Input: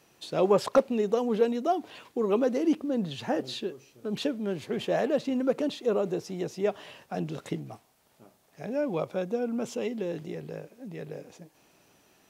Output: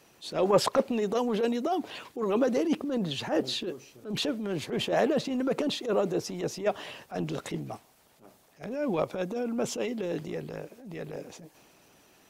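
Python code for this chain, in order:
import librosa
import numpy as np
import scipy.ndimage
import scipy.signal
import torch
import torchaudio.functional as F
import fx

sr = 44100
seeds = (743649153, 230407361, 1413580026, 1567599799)

y = fx.transient(x, sr, attack_db=-10, sustain_db=2)
y = fx.hpss(y, sr, part='harmonic', gain_db=-6)
y = F.gain(torch.from_numpy(y), 5.5).numpy()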